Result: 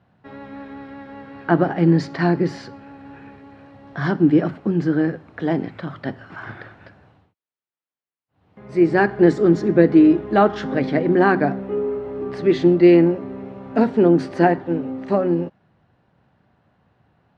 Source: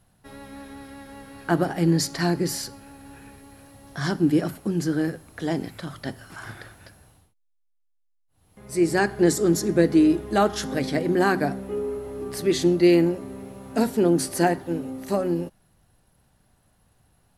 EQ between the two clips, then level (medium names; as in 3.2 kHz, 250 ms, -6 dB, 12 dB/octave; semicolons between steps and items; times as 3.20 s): band-pass 110–2500 Hz; distance through air 71 m; +5.5 dB